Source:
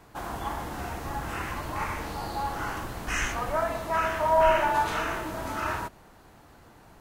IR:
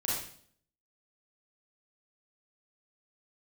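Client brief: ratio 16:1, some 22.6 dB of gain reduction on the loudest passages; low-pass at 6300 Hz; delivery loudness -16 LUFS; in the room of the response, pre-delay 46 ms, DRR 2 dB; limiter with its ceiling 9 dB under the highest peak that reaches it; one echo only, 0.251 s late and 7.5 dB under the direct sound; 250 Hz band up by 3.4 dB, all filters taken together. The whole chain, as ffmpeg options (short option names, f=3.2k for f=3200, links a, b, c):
-filter_complex "[0:a]lowpass=6.3k,equalizer=f=250:t=o:g=4.5,acompressor=threshold=-39dB:ratio=16,alimiter=level_in=14.5dB:limit=-24dB:level=0:latency=1,volume=-14.5dB,aecho=1:1:251:0.422,asplit=2[a][b];[1:a]atrim=start_sample=2205,adelay=46[c];[b][c]afir=irnorm=-1:irlink=0,volume=-8dB[d];[a][d]amix=inputs=2:normalize=0,volume=28.5dB"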